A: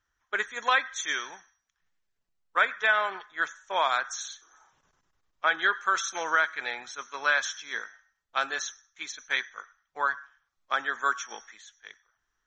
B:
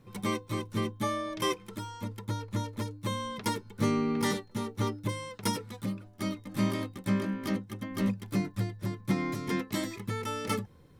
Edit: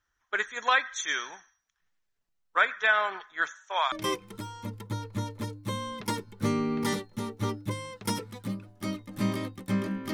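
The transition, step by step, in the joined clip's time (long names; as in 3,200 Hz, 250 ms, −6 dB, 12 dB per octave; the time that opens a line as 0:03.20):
A
0:03.51–0:03.92: high-pass filter 260 Hz → 1,100 Hz
0:03.92: continue with B from 0:01.30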